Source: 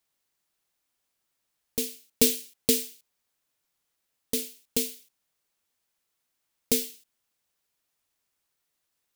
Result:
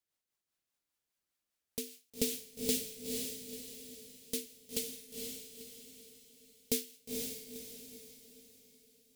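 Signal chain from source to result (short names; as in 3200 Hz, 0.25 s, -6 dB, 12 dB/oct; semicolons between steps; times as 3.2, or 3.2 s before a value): rotary speaker horn 5 Hz; diffused feedback echo 0.484 s, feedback 44%, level -3 dB; gain -7 dB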